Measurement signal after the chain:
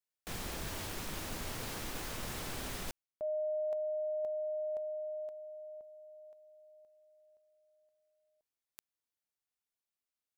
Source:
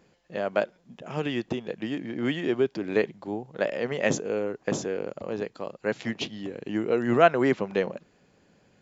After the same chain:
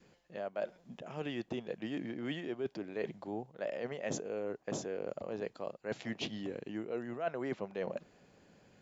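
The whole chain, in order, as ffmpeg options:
-af "adynamicequalizer=threshold=0.0126:dfrequency=660:dqfactor=2.2:tfrequency=660:tqfactor=2.2:attack=5:release=100:ratio=0.375:range=2.5:mode=boostabove:tftype=bell,areverse,acompressor=threshold=-34dB:ratio=6,areverse,volume=-1.5dB"

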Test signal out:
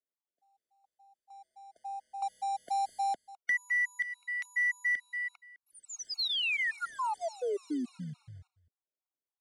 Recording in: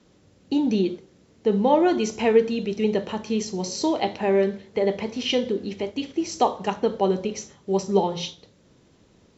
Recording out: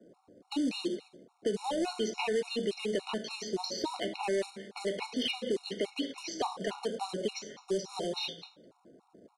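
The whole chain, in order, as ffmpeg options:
-filter_complex "[0:a]acrossover=split=1100[a][b];[a]alimiter=limit=-16dB:level=0:latency=1:release=92[c];[b]agate=range=-32dB:threshold=-60dB:ratio=16:detection=peak[d];[c][d]amix=inputs=2:normalize=0,acrossover=split=6700[e][f];[f]acompressor=threshold=-52dB:ratio=4:attack=1:release=60[g];[e][g]amix=inputs=2:normalize=0,acrossover=split=210 5600:gain=0.0631 1 0.112[h][i][j];[h][i][j]amix=inputs=3:normalize=0,acrusher=bits=5:mode=log:mix=0:aa=0.000001,acrossover=split=260|3000[k][l][m];[k]acompressor=threshold=-43dB:ratio=4[n];[l]acompressor=threshold=-35dB:ratio=4[o];[m]acompressor=threshold=-42dB:ratio=4[p];[n][o][p]amix=inputs=3:normalize=0,equalizer=f=4.2k:t=o:w=0.27:g=4,aecho=1:1:207:0.106,aresample=22050,aresample=44100,asoftclip=type=tanh:threshold=-26.5dB,afftfilt=real='re*gt(sin(2*PI*3.5*pts/sr)*(1-2*mod(floor(b*sr/1024/730),2)),0)':imag='im*gt(sin(2*PI*3.5*pts/sr)*(1-2*mod(floor(b*sr/1024/730),2)),0)':win_size=1024:overlap=0.75,volume=5.5dB"

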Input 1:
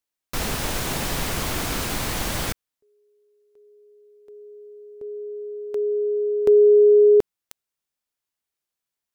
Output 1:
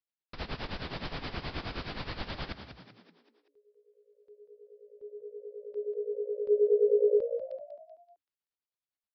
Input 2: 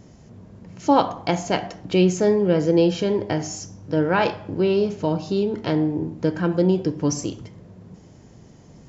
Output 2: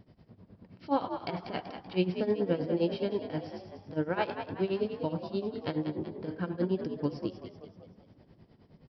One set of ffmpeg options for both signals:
-filter_complex "[0:a]aresample=11025,aresample=44100,tremolo=f=9.5:d=0.86,asplit=6[a][b][c][d][e][f];[b]adelay=191,afreqshift=56,volume=-9dB[g];[c]adelay=382,afreqshift=112,volume=-15.6dB[h];[d]adelay=573,afreqshift=168,volume=-22.1dB[i];[e]adelay=764,afreqshift=224,volume=-28.7dB[j];[f]adelay=955,afreqshift=280,volume=-35.2dB[k];[a][g][h][i][j][k]amix=inputs=6:normalize=0,volume=-8dB"

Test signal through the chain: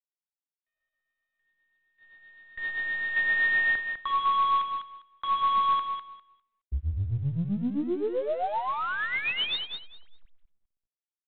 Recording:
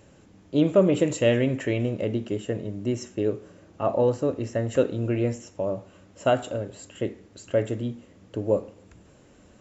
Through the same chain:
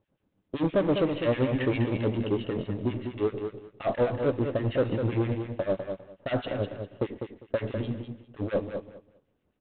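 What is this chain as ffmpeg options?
-filter_complex "[0:a]aeval=exprs='if(lt(val(0),0),0.708*val(0),val(0))':c=same,agate=range=-23dB:threshold=-42dB:ratio=16:detection=peak,asplit=2[a][b];[b]alimiter=limit=-16.5dB:level=0:latency=1:release=70,volume=3dB[c];[a][c]amix=inputs=2:normalize=0,asoftclip=type=tanh:threshold=-17.5dB,acrossover=split=1500[d][e];[d]aeval=exprs='val(0)*(1-1/2+1/2*cos(2*PI*7.7*n/s))':c=same[f];[e]aeval=exprs='val(0)*(1-1/2-1/2*cos(2*PI*7.7*n/s))':c=same[g];[f][g]amix=inputs=2:normalize=0,aecho=1:1:201|402|603:0.447|0.0849|0.0161" -ar 8000 -c:a adpcm_ima_wav

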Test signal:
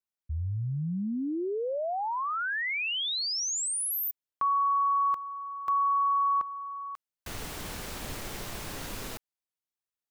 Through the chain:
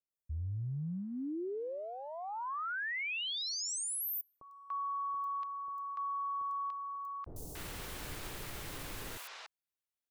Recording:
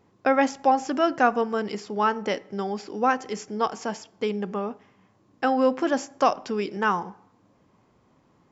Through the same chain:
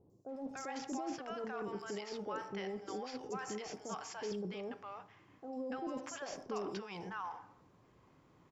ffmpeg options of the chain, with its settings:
-filter_complex "[0:a]equalizer=f=220:w=4.4:g=-8,areverse,acompressor=threshold=-32dB:ratio=12:attack=0.24:release=44:knee=6:detection=rms,areverse,acrossover=split=680|5900[a][b][c];[c]adelay=100[d];[b]adelay=290[e];[a][e][d]amix=inputs=3:normalize=0,volume=-2dB"

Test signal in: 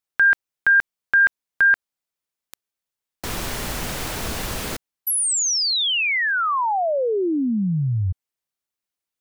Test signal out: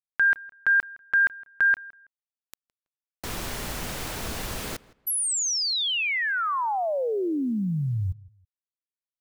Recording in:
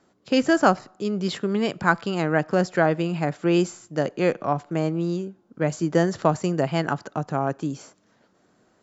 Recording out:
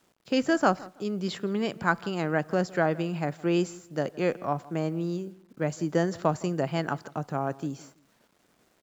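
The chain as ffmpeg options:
-filter_complex "[0:a]acrusher=bits=9:mix=0:aa=0.000001,asplit=2[a][b];[b]adelay=163,lowpass=f=2.8k:p=1,volume=-21dB,asplit=2[c][d];[d]adelay=163,lowpass=f=2.8k:p=1,volume=0.26[e];[c][e]amix=inputs=2:normalize=0[f];[a][f]amix=inputs=2:normalize=0,volume=-5dB"

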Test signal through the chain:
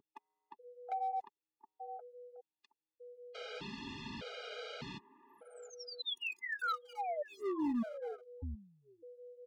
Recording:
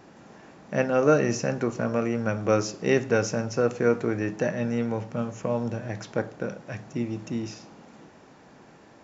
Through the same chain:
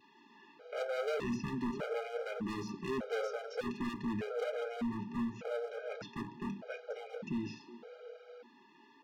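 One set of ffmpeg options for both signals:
-filter_complex "[0:a]aecho=1:1:4.5:0.37,adynamicequalizer=threshold=0.0282:dfrequency=480:dqfactor=1.1:tfrequency=480:tqfactor=1.1:attack=5:release=100:ratio=0.375:range=1.5:mode=cutabove:tftype=bell,acrossover=split=360|1400[a][b][c];[a]agate=range=-26dB:threshold=-45dB:ratio=16:detection=peak[d];[b]aecho=1:1:721|1442:0.398|0.0597[e];[c]acompressor=threshold=-36dB:ratio=16[f];[d][e][f]amix=inputs=3:normalize=0,aeval=exprs='val(0)+0.00355*sin(2*PI*490*n/s)':c=same,acontrast=89,flanger=delay=0.7:depth=7.1:regen=-34:speed=0.73:shape=triangular,highpass=150,equalizer=f=180:t=q:w=4:g=-3,equalizer=f=360:t=q:w=4:g=-5,equalizer=f=740:t=q:w=4:g=-10,equalizer=f=1.9k:t=q:w=4:g=-8,lowpass=f=4.1k:w=0.5412,lowpass=f=4.1k:w=1.3066,bandreject=f=1.1k:w=5.3,volume=28.5dB,asoftclip=hard,volume=-28.5dB,afftfilt=real='re*gt(sin(2*PI*0.83*pts/sr)*(1-2*mod(floor(b*sr/1024/410),2)),0)':imag='im*gt(sin(2*PI*0.83*pts/sr)*(1-2*mod(floor(b*sr/1024/410),2)),0)':win_size=1024:overlap=0.75,volume=-3dB"

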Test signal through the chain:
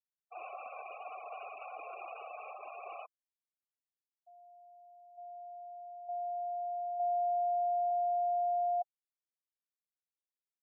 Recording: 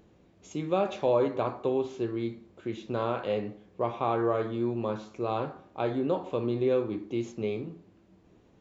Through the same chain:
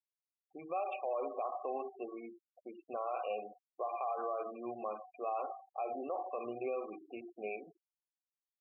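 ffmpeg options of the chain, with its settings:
-filter_complex "[0:a]adynamicequalizer=threshold=0.00447:dfrequency=2300:dqfactor=1.1:tfrequency=2300:tqfactor=1.1:attack=5:release=100:ratio=0.375:range=3:mode=boostabove:tftype=bell,asplit=3[a][b][c];[a]bandpass=f=730:t=q:w=8,volume=0dB[d];[b]bandpass=f=1.09k:t=q:w=8,volume=-6dB[e];[c]bandpass=f=2.44k:t=q:w=8,volume=-9dB[f];[d][e][f]amix=inputs=3:normalize=0,bandreject=f=50:t=h:w=6,bandreject=f=100:t=h:w=6,bandreject=f=150:t=h:w=6,bandreject=f=200:t=h:w=6,bandreject=f=250:t=h:w=6,bandreject=f=300:t=h:w=6,bandreject=f=350:t=h:w=6,bandreject=f=400:t=h:w=6,asplit=2[g][h];[h]acompressor=threshold=-37dB:ratio=10,volume=2dB[i];[g][i]amix=inputs=2:normalize=0,alimiter=level_in=4.5dB:limit=-24dB:level=0:latency=1:release=56,volume=-4.5dB,afftfilt=real='re*gte(hypot(re,im),0.01)':imag='im*gte(hypot(re,im),0.01)':win_size=1024:overlap=0.75"

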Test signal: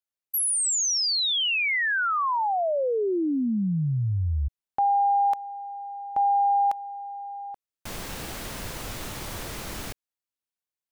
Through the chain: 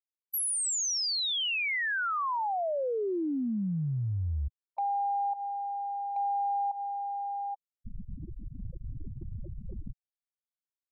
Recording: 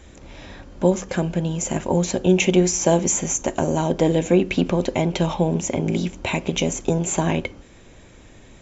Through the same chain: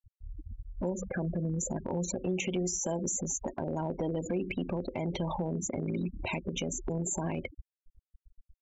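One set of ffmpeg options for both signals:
-af "afftfilt=real='re*gte(hypot(re,im),0.0708)':imag='im*gte(hypot(re,im),0.0708)':win_size=1024:overlap=0.75,acompressor=threshold=-34dB:ratio=4:attack=0.53:release=95:knee=6:detection=rms,volume=3.5dB"

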